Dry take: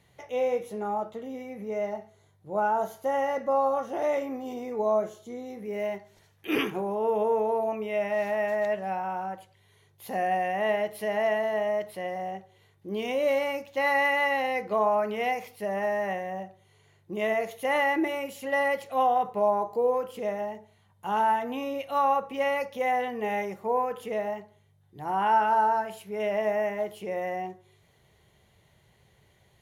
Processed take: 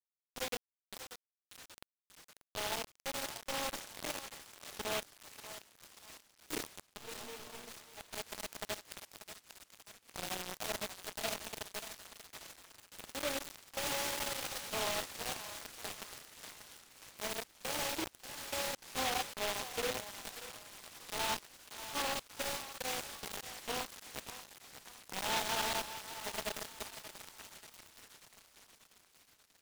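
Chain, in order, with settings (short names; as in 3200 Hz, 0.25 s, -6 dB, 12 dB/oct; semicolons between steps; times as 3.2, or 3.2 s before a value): reverse delay 0.308 s, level -13 dB; resonator 230 Hz, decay 1.4 s, mix 60%; bit-crush 5-bit; 6.97–8.01 resonator 120 Hz, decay 0.33 s, harmonics all, mix 90%; narrowing echo 0.587 s, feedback 67%, band-pass 2700 Hz, level -6 dB; noise-modulated delay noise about 2200 Hz, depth 0.17 ms; gain -6.5 dB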